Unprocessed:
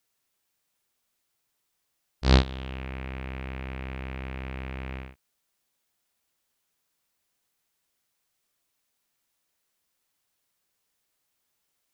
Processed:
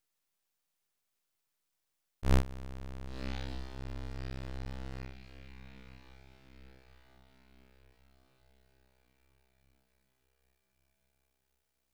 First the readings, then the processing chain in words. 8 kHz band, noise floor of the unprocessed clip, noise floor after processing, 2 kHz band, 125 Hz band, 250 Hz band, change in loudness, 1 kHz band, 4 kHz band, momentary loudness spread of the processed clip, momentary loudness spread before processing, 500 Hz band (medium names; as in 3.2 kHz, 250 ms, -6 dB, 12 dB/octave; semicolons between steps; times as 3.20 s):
no reading, -78 dBFS, -83 dBFS, -10.5 dB, -7.5 dB, -8.0 dB, -8.5 dB, -9.0 dB, -13.5 dB, 26 LU, 15 LU, -8.5 dB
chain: echo that smears into a reverb 1041 ms, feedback 53%, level -12.5 dB; half-wave rectifier; trim -3 dB